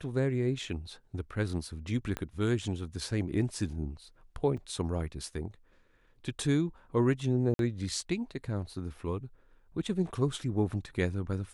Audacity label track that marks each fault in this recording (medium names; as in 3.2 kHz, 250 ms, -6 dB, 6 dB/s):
2.170000	2.170000	pop -19 dBFS
4.570000	4.570000	dropout 4.4 ms
7.540000	7.590000	dropout 52 ms